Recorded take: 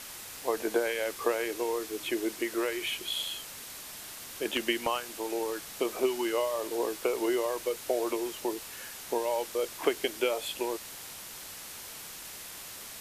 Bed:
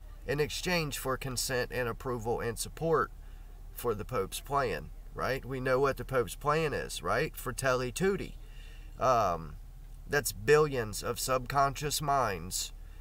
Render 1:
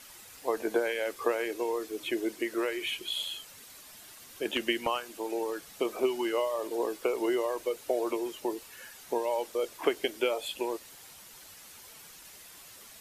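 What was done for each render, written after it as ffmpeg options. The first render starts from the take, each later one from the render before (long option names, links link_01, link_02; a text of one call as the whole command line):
ffmpeg -i in.wav -af "afftdn=noise_reduction=9:noise_floor=-44" out.wav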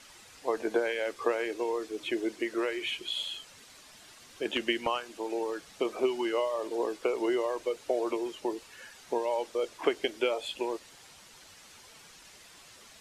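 ffmpeg -i in.wav -af "lowpass=7300" out.wav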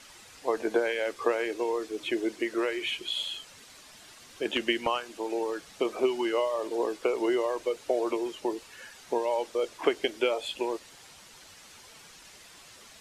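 ffmpeg -i in.wav -af "volume=2dB" out.wav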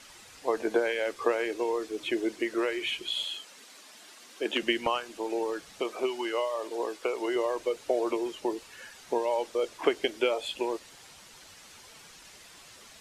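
ffmpeg -i in.wav -filter_complex "[0:a]asettb=1/sr,asplit=3[link_01][link_02][link_03];[link_01]atrim=end=3.254[link_04];[link_02]atrim=start=3.25:end=4.63,asetpts=PTS-STARTPTS,afade=type=in:duration=0.004:curve=qsin,afade=type=out:start_time=1.376:duration=0.004:curve=qsin,highpass=frequency=210:width=0.5412,highpass=frequency=210:width=1.3066[link_05];[link_03]atrim=start=4.626[link_06];[link_04][link_05]acrossfade=duration=0.004:curve1=hsin:curve2=qsin[link_07];[link_07][link_06]acrossfade=duration=0.004:curve1=qsin:curve2=hsin,asettb=1/sr,asplit=3[link_08][link_09][link_10];[link_08]atrim=end=5.814[link_11];[link_09]atrim=start=5.81:end=7.36,asetpts=PTS-STARTPTS,afade=type=in:duration=0.004:curve=qsin,afade=type=out:start_time=1.546:duration=0.004:curve=qsin,lowshelf=frequency=330:gain=-10[link_12];[link_10]atrim=start=7.356[link_13];[link_11][link_12]acrossfade=duration=0.004:curve1=hsin:curve2=qsin[link_14];[link_14][link_13]acrossfade=duration=0.004:curve1=qsin:curve2=hsin" out.wav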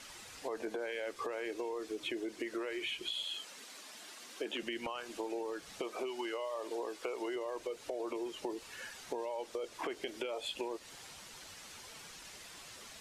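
ffmpeg -i in.wav -af "alimiter=limit=-23dB:level=0:latency=1:release=15,acompressor=threshold=-36dB:ratio=6" out.wav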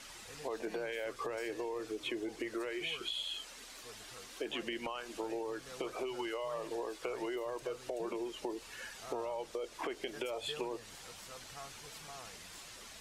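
ffmpeg -i in.wav -i bed.wav -filter_complex "[1:a]volume=-23dB[link_01];[0:a][link_01]amix=inputs=2:normalize=0" out.wav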